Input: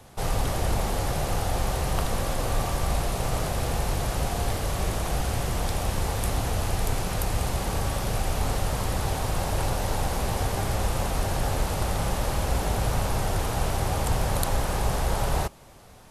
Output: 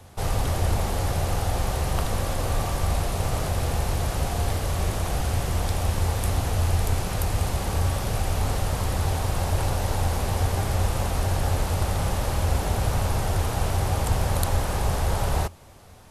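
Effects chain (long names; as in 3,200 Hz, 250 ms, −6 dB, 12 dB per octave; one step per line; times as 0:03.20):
parametric band 86 Hz +11 dB 0.26 octaves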